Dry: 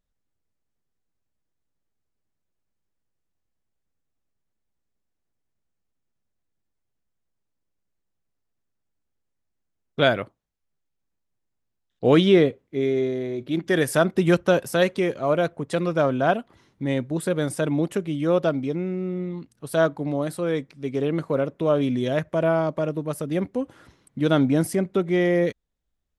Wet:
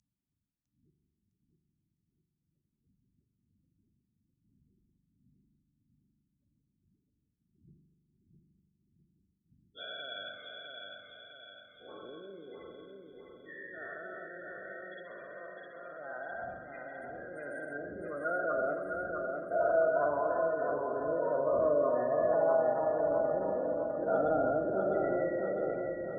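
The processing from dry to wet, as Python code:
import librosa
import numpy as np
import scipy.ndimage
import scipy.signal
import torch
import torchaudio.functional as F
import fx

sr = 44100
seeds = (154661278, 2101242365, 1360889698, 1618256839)

p1 = fx.spec_dilate(x, sr, span_ms=480)
p2 = fx.dmg_wind(p1, sr, seeds[0], corner_hz=130.0, level_db=-25.0)
p3 = fx.spec_gate(p2, sr, threshold_db=-15, keep='strong')
p4 = fx.filter_sweep_bandpass(p3, sr, from_hz=6300.0, to_hz=900.0, start_s=15.54, end_s=19.16, q=4.8)
p5 = p4 + fx.echo_feedback(p4, sr, ms=656, feedback_pct=51, wet_db=-4.5, dry=0)
y = fx.rev_spring(p5, sr, rt60_s=1.7, pass_ms=(41,), chirp_ms=65, drr_db=5.5)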